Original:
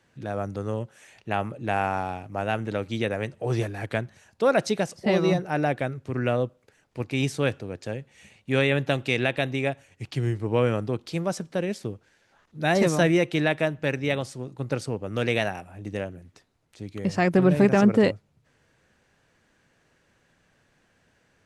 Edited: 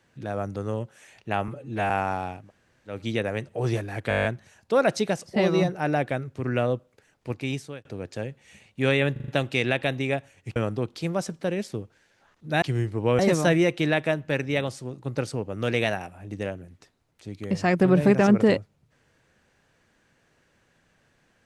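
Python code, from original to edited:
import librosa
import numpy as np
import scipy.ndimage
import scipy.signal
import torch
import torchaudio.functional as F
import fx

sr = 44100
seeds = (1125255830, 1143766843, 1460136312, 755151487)

y = fx.edit(x, sr, fx.stretch_span(start_s=1.48, length_s=0.28, factor=1.5),
    fx.room_tone_fill(start_s=2.29, length_s=0.5, crossfade_s=0.16),
    fx.stutter(start_s=3.95, slice_s=0.02, count=9),
    fx.fade_out_span(start_s=6.99, length_s=0.56),
    fx.stutter(start_s=8.82, slice_s=0.04, count=5),
    fx.move(start_s=10.1, length_s=0.57, to_s=12.73), tone=tone)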